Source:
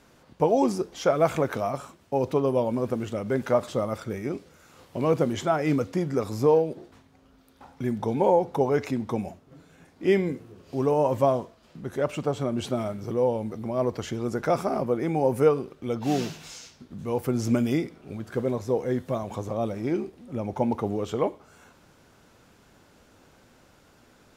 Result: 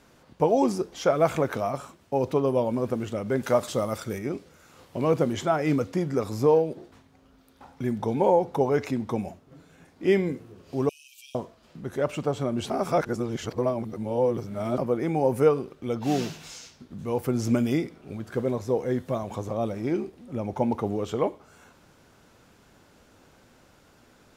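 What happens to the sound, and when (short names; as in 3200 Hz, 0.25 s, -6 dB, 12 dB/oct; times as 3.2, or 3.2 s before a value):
3.43–4.19 high shelf 3900 Hz +9.5 dB
10.89–11.35 brick-wall FIR high-pass 2300 Hz
12.7–14.78 reverse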